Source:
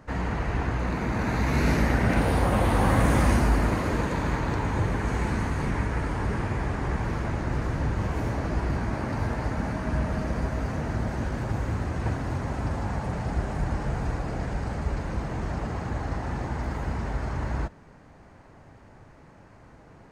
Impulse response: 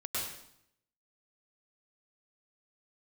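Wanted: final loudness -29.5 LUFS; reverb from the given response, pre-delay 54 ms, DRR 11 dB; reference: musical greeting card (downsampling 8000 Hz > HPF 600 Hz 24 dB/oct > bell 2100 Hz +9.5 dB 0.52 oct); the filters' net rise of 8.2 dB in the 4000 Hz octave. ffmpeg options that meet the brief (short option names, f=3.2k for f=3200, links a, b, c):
-filter_complex "[0:a]equalizer=f=4k:t=o:g=9,asplit=2[a][b];[1:a]atrim=start_sample=2205,adelay=54[c];[b][c]afir=irnorm=-1:irlink=0,volume=-15.5dB[d];[a][d]amix=inputs=2:normalize=0,aresample=8000,aresample=44100,highpass=f=600:w=0.5412,highpass=f=600:w=1.3066,equalizer=f=2.1k:t=o:w=0.52:g=9.5"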